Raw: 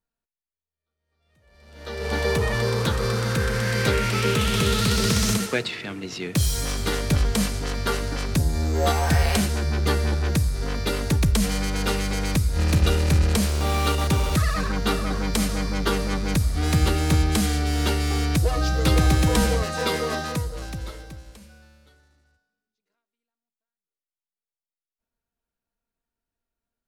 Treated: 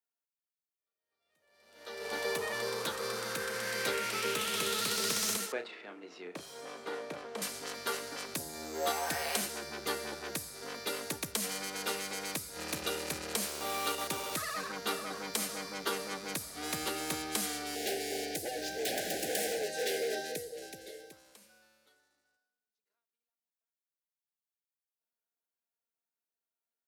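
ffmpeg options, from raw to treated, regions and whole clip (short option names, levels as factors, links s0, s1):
-filter_complex "[0:a]asettb=1/sr,asplit=3[s0][s1][s2];[s0]atrim=end=5.524[s3];[s1]atrim=start=5.52:end=7.42,asetpts=PTS-STARTPTS,afade=t=in:d=0.004:c=qsin,afade=t=out:st=1.896:d=0.004:c=qsin,bandpass=f=590:t=q:w=0.59,asplit=2[s4][s5];[s5]adelay=34,volume=0.355[s6];[s4][s6]amix=inputs=2:normalize=0,atrim=end_sample=83790[s7];[s2]atrim=start=7.416[s8];[s3][s7]acrossfade=d=0.004:c1=hsin:c2=qsin[s9];[s9][s8]acrossfade=d=0.004:c1=qsin:c2=hsin,asettb=1/sr,asplit=3[s10][s11][s12];[s10]atrim=end=17.754[s13];[s11]atrim=start=17.75:end=21.12,asetpts=PTS-STARTPTS,afade=t=in:d=0.004:c=qsin,afade=t=out:st=3.366:d=0.004:c=qsin,equalizer=f=420:t=o:w=0.34:g=13.5,aeval=exprs='0.141*(abs(mod(val(0)/0.141+3,4)-2)-1)':c=same,asuperstop=centerf=1100:order=20:qfactor=1.6[s14];[s12]atrim=start=21.116[s15];[s13][s14]acrossfade=d=0.004:c1=hsin:c2=qsin[s16];[s16][s15]acrossfade=d=0.004:c1=qsin:c2=hsin,highpass=380,highshelf=f=8900:g=9,volume=0.355"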